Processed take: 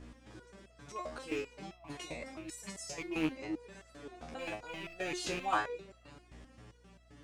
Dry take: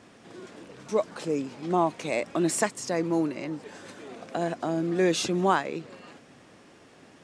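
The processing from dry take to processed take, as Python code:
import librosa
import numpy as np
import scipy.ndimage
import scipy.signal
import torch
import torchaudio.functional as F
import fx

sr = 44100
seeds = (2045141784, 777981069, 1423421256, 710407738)

y = fx.rattle_buzz(x, sr, strikes_db=-33.0, level_db=-24.0)
y = fx.dynamic_eq(y, sr, hz=180.0, q=0.78, threshold_db=-37.0, ratio=4.0, max_db=-5)
y = fx.over_compress(y, sr, threshold_db=-37.0, ratio=-1.0, at=(1.57, 2.98))
y = fx.add_hum(y, sr, base_hz=60, snr_db=11)
y = fx.resonator_held(y, sr, hz=7.6, low_hz=78.0, high_hz=660.0)
y = F.gain(torch.from_numpy(y), 4.0).numpy()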